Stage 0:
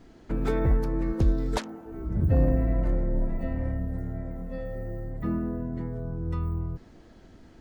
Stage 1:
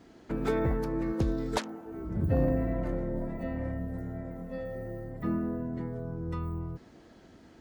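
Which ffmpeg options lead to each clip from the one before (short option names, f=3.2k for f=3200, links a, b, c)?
-af "highpass=f=150:p=1"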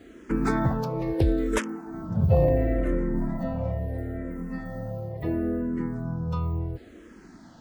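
-filter_complex "[0:a]asplit=2[a][b];[b]afreqshift=-0.73[c];[a][c]amix=inputs=2:normalize=1,volume=8.5dB"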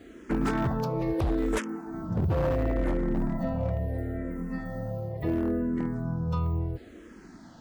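-af "alimiter=limit=-16dB:level=0:latency=1:release=178,aeval=exprs='0.1*(abs(mod(val(0)/0.1+3,4)-2)-1)':c=same"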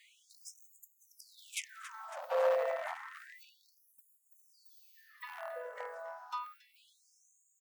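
-filter_complex "[0:a]asplit=7[a][b][c][d][e][f][g];[b]adelay=277,afreqshift=-49,volume=-14.5dB[h];[c]adelay=554,afreqshift=-98,volume=-19.1dB[i];[d]adelay=831,afreqshift=-147,volume=-23.7dB[j];[e]adelay=1108,afreqshift=-196,volume=-28.2dB[k];[f]adelay=1385,afreqshift=-245,volume=-32.8dB[l];[g]adelay=1662,afreqshift=-294,volume=-37.4dB[m];[a][h][i][j][k][l][m]amix=inputs=7:normalize=0,afftfilt=real='re*gte(b*sr/1024,440*pow(6600/440,0.5+0.5*sin(2*PI*0.3*pts/sr)))':imag='im*gte(b*sr/1024,440*pow(6600/440,0.5+0.5*sin(2*PI*0.3*pts/sr)))':win_size=1024:overlap=0.75"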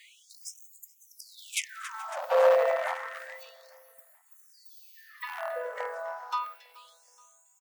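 -af "aecho=1:1:426|852|1278:0.0708|0.0311|0.0137,volume=8.5dB"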